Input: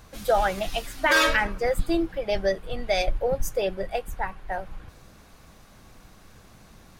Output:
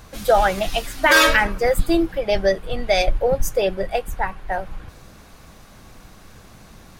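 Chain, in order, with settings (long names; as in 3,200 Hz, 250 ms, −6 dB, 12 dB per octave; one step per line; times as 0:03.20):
0:01.03–0:02.20: high-shelf EQ 11,000 Hz +7 dB
level +6 dB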